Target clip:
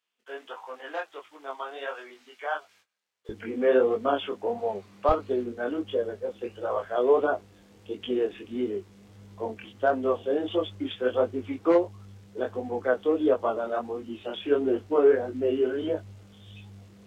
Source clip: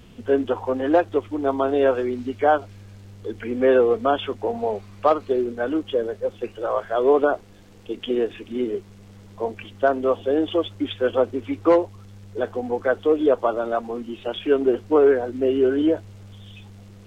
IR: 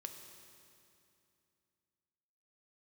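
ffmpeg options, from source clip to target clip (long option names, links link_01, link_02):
-af "asetnsamples=nb_out_samples=441:pad=0,asendcmd='3.29 highpass f 140;5.09 highpass f 57',highpass=1100,agate=range=-21dB:threshold=-53dB:ratio=16:detection=peak,flanger=delay=19:depth=5.6:speed=1.5,volume=-2dB"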